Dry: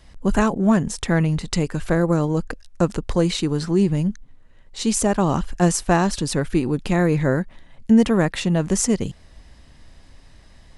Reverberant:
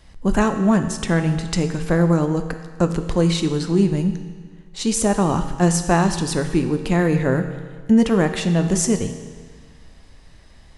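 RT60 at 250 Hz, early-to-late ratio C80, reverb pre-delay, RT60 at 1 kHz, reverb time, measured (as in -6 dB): 1.6 s, 10.0 dB, 6 ms, 1.6 s, 1.6 s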